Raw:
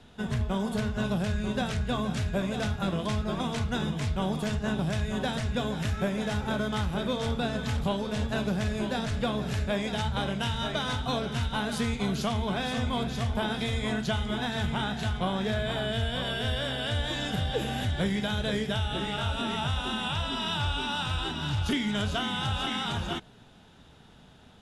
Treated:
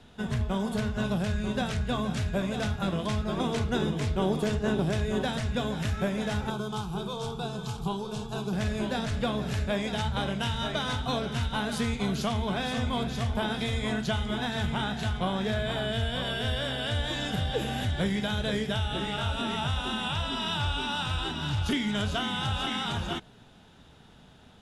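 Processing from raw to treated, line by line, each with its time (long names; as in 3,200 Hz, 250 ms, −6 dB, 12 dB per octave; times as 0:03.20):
0:03.36–0:05.22: parametric band 390 Hz +8.5 dB
0:06.50–0:08.53: phaser with its sweep stopped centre 380 Hz, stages 8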